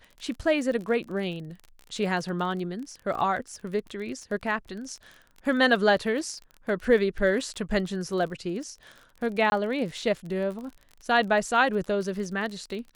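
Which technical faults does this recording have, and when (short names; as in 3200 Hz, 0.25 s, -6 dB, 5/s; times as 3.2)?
crackle 33/s -35 dBFS
9.5–9.52 gap 20 ms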